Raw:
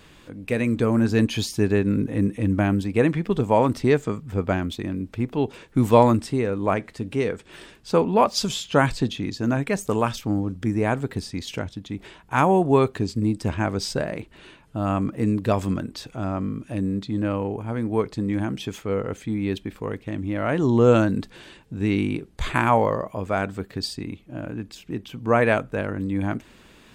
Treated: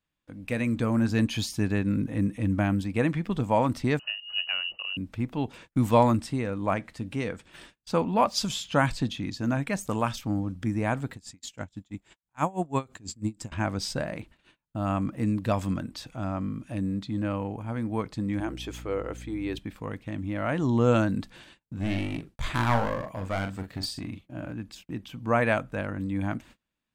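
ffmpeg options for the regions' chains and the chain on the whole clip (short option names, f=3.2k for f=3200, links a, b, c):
-filter_complex "[0:a]asettb=1/sr,asplit=3[a][b][c];[a]atrim=end=3.994[d];[b]atrim=start=3.99:end=4.97,asetpts=PTS-STARTPTS,afade=t=in:d=0.004:c=qsin,afade=t=out:st=0.976:d=0.004:c=qsin,equalizer=f=730:t=o:w=1.7:g=-13,lowpass=f=2.6k:t=q:w=0.5098,lowpass=f=2.6k:t=q:w=0.6013,lowpass=f=2.6k:t=q:w=0.9,lowpass=f=2.6k:t=q:w=2.563,afreqshift=-3000[e];[c]atrim=start=4.966[f];[d][e]acrossfade=d=0.004:c1=hsin:c2=qsin[g];[g][f]acrossfade=d=0.004:c1=qsin:c2=hsin,asettb=1/sr,asplit=3[h][i][j];[h]atrim=end=11.134[k];[i]atrim=start=11.13:end=13.52,asetpts=PTS-STARTPTS,afade=t=in:d=0.004:c=qsin,afade=t=out:st=2.386:d=0.004:c=qsin,equalizer=f=7.3k:t=o:w=0.22:g=15,aeval=exprs='val(0)*pow(10,-25*(0.5-0.5*cos(2*PI*6.1*n/s))/20)':c=same[l];[j]atrim=start=13.516[m];[k][l]acrossfade=d=0.004:c1=hsin:c2=qsin[n];[n][m]acrossfade=d=0.004:c1=qsin:c2=hsin,asettb=1/sr,asplit=3[o][p][q];[o]atrim=end=18.404[r];[p]atrim=start=18.4:end=19.59,asetpts=PTS-STARTPTS,afade=t=in:d=0.004:c=qsin,afade=t=out:st=1.186:d=0.004:c=qsin,lowshelf=f=270:t=q:w=3:g=-7.5,aeval=exprs='val(0)+0.0141*(sin(2*PI*60*n/s)+sin(2*PI*2*60*n/s)/2+sin(2*PI*3*60*n/s)/3+sin(2*PI*4*60*n/s)/4+sin(2*PI*5*60*n/s)/5)':c=same[s];[q]atrim=start=19.586[t];[r][s]acrossfade=d=0.004:c1=hsin:c2=qsin[u];[u][t]acrossfade=d=0.004:c1=qsin:c2=hsin,asettb=1/sr,asplit=3[v][w][x];[v]atrim=end=21.734[y];[w]atrim=start=21.73:end=24.53,asetpts=PTS-STARTPTS,afade=t=in:d=0.004:c=qsin,afade=t=out:st=2.796:d=0.004:c=qsin,agate=range=-33dB:threshold=-49dB:ratio=3:release=100:detection=peak,aeval=exprs='clip(val(0),-1,0.0596)':c=same,asplit=2[z][aa];[aa]adelay=42,volume=-7.5dB[ab];[z][ab]amix=inputs=2:normalize=0,atrim=end_sample=123480[ac];[x]atrim=start=24.526[ad];[y][ac]acrossfade=d=0.004:c1=hsin:c2=qsin[ae];[ae][ad]acrossfade=d=0.004:c1=qsin:c2=hsin,agate=range=-31dB:threshold=-44dB:ratio=16:detection=peak,equalizer=f=410:t=o:w=0.39:g=-10,volume=-3.5dB"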